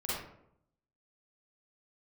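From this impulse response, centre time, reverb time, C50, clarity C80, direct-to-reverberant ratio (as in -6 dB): 73 ms, 0.75 s, -3.5 dB, 3.0 dB, -9.0 dB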